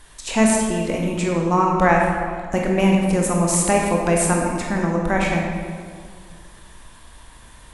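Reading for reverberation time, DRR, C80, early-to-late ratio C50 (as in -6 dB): 1.9 s, -1.0 dB, 3.0 dB, 1.0 dB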